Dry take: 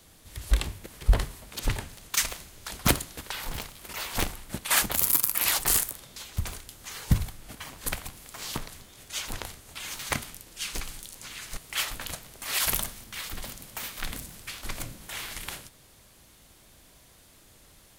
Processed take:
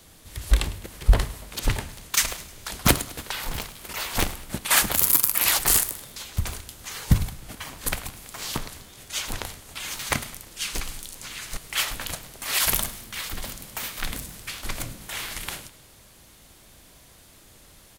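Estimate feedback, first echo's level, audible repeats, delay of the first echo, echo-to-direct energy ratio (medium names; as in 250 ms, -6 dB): 48%, -18.5 dB, 3, 104 ms, -17.5 dB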